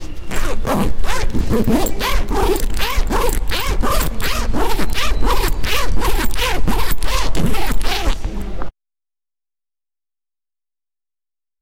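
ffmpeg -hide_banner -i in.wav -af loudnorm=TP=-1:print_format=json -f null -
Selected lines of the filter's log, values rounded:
"input_i" : "-20.4",
"input_tp" : "-3.6",
"input_lra" : "4.9",
"input_thresh" : "-30.5",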